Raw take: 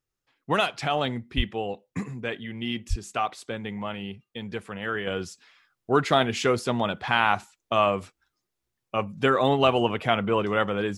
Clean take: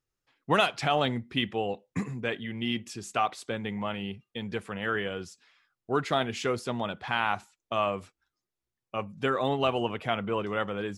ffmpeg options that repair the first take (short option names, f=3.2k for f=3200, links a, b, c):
-filter_complex "[0:a]asplit=3[a][b][c];[a]afade=t=out:st=1.36:d=0.02[d];[b]highpass=f=140:w=0.5412,highpass=f=140:w=1.3066,afade=t=in:st=1.36:d=0.02,afade=t=out:st=1.48:d=0.02[e];[c]afade=t=in:st=1.48:d=0.02[f];[d][e][f]amix=inputs=3:normalize=0,asplit=3[g][h][i];[g]afade=t=out:st=2.89:d=0.02[j];[h]highpass=f=140:w=0.5412,highpass=f=140:w=1.3066,afade=t=in:st=2.89:d=0.02,afade=t=out:st=3.01:d=0.02[k];[i]afade=t=in:st=3.01:d=0.02[l];[j][k][l]amix=inputs=3:normalize=0,asetnsamples=n=441:p=0,asendcmd='5.07 volume volume -6dB',volume=0dB"